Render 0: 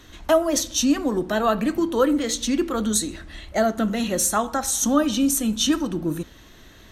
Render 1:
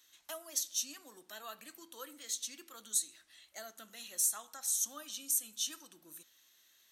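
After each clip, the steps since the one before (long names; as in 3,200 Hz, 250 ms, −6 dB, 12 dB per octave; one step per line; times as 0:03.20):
first difference
level −9 dB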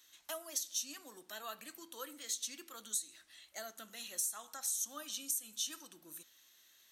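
downward compressor 6 to 1, threshold −35 dBFS, peak gain reduction 9 dB
level +1.5 dB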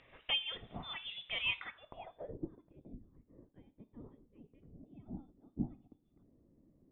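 voice inversion scrambler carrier 3,800 Hz
low-pass filter sweep 3,000 Hz → 280 Hz, 0:01.48–0:02.52
level +4 dB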